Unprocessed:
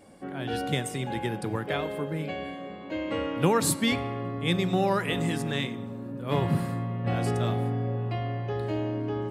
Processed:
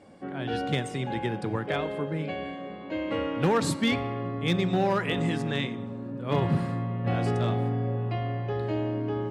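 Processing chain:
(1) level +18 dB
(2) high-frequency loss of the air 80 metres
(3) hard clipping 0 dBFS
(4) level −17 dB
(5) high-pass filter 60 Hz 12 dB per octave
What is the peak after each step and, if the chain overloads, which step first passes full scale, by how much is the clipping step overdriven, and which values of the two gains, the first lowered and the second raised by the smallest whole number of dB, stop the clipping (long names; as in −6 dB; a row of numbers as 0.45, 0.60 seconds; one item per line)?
+8.5, +8.0, 0.0, −17.0, −13.5 dBFS
step 1, 8.0 dB
step 1 +10 dB, step 4 −9 dB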